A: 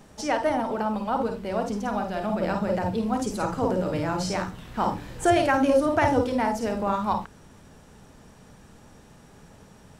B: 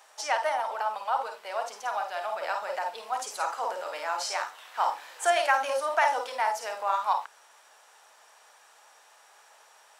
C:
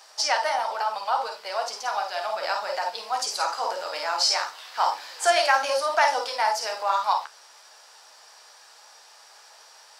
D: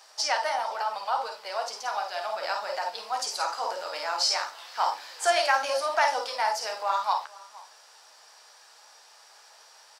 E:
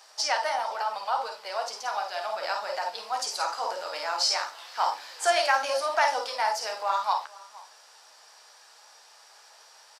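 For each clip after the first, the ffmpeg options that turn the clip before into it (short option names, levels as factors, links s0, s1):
-af "highpass=f=710:w=0.5412,highpass=f=710:w=1.3066,volume=1.12"
-af "flanger=delay=9.9:depth=5.7:regen=-45:speed=1:shape=triangular,acontrast=83,equalizer=f=4800:w=2.5:g=13.5"
-filter_complex "[0:a]asplit=2[s0][s1];[s1]adelay=466.5,volume=0.0891,highshelf=f=4000:g=-10.5[s2];[s0][s2]amix=inputs=2:normalize=0,volume=0.708"
-af "aresample=32000,aresample=44100"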